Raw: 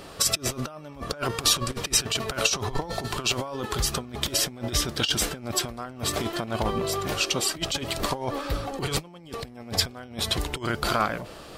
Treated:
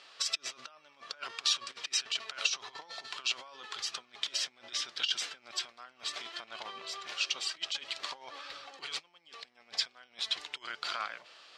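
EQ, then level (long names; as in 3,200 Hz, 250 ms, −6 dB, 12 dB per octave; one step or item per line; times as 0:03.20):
resonant band-pass 3,800 Hz, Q 0.51
high-frequency loss of the air 150 metres
spectral tilt +3 dB per octave
−7.0 dB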